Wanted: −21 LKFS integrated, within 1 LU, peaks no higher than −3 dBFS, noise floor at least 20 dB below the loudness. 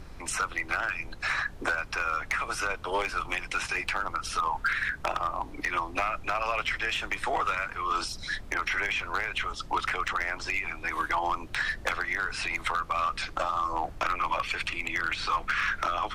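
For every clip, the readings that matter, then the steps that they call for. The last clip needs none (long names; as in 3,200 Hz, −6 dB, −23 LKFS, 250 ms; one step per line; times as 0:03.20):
share of clipped samples 0.6%; peaks flattened at −20.5 dBFS; background noise floor −43 dBFS; target noise floor −50 dBFS; integrated loudness −29.5 LKFS; sample peak −20.5 dBFS; target loudness −21.0 LKFS
→ clipped peaks rebuilt −20.5 dBFS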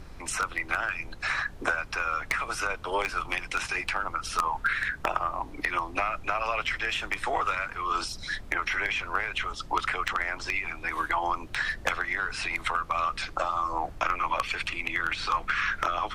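share of clipped samples 0.0%; background noise floor −43 dBFS; target noise floor −49 dBFS
→ noise reduction from a noise print 6 dB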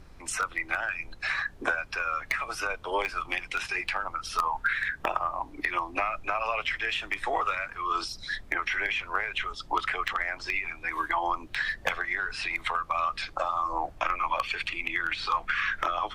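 background noise floor −48 dBFS; target noise floor −50 dBFS
→ noise reduction from a noise print 6 dB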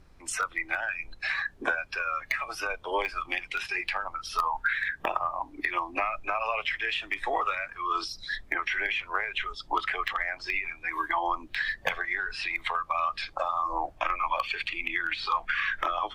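background noise floor −53 dBFS; integrated loudness −30.0 LKFS; sample peak −11.0 dBFS; target loudness −21.0 LKFS
→ level +9 dB
brickwall limiter −3 dBFS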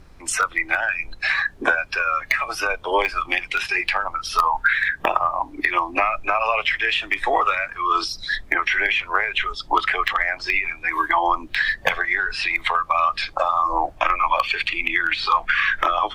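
integrated loudness −21.0 LKFS; sample peak −3.0 dBFS; background noise floor −44 dBFS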